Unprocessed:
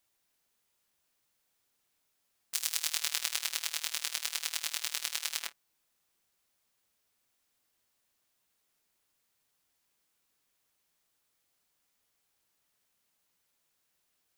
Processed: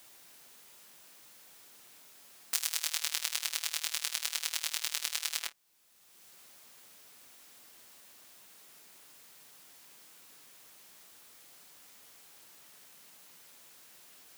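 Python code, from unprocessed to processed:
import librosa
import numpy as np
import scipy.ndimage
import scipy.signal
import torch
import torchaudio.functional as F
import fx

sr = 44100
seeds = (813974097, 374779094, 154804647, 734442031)

y = fx.highpass(x, sr, hz=390.0, slope=24, at=(2.63, 3.04))
y = fx.band_squash(y, sr, depth_pct=70)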